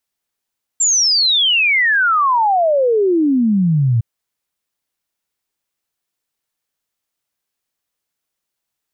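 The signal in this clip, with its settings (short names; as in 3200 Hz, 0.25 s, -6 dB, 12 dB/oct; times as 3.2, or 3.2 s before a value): log sweep 7500 Hz -> 110 Hz 3.21 s -11 dBFS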